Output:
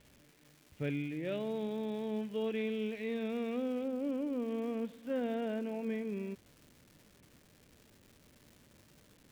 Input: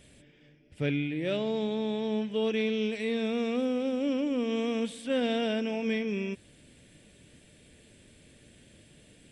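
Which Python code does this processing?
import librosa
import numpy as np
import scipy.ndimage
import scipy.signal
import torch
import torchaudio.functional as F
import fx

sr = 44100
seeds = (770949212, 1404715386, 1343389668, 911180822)

y = fx.lowpass(x, sr, hz=fx.steps((0.0, 2700.0), (3.84, 1600.0)), slope=12)
y = fx.dmg_crackle(y, sr, seeds[0], per_s=510.0, level_db=-44.0)
y = y * librosa.db_to_amplitude(-6.5)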